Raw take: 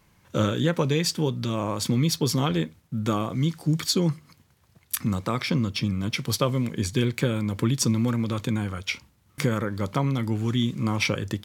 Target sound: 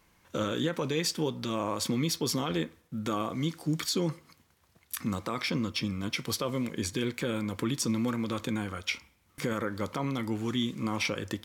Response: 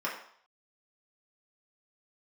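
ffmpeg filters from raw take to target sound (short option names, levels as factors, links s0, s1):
-filter_complex "[0:a]equalizer=f=120:t=o:w=0.93:g=-8.5,alimiter=limit=0.141:level=0:latency=1:release=36,asplit=2[s0][s1];[1:a]atrim=start_sample=2205[s2];[s1][s2]afir=irnorm=-1:irlink=0,volume=0.0891[s3];[s0][s3]amix=inputs=2:normalize=0,volume=0.75"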